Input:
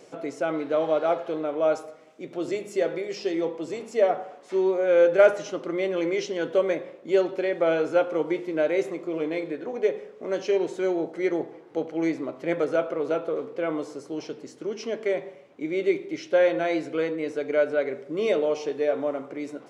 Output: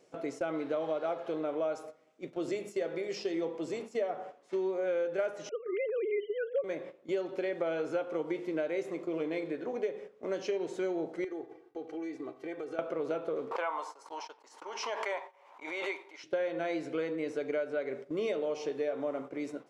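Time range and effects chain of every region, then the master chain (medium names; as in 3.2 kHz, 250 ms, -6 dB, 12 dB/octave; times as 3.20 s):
5.49–6.64 s: formants replaced by sine waves + bass shelf 450 Hz +3 dB
11.24–12.79 s: gate with hold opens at -38 dBFS, closes at -43 dBFS + comb 2.6 ms, depth 93% + compression, threshold -33 dBFS
13.51–16.24 s: gate -42 dBFS, range -19 dB + resonant high-pass 930 Hz, resonance Q 7.2 + swell ahead of each attack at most 43 dB/s
whole clip: gate -38 dBFS, range -10 dB; compression 6:1, threshold -26 dBFS; trim -3.5 dB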